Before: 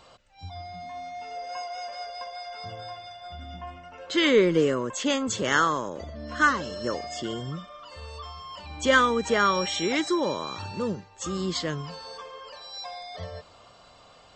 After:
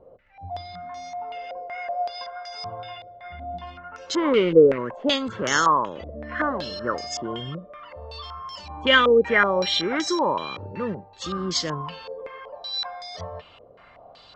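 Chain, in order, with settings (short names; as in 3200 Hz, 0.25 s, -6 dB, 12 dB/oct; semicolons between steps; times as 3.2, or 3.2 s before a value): 4.33–4.78 median filter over 41 samples; stepped low-pass 5.3 Hz 490–5900 Hz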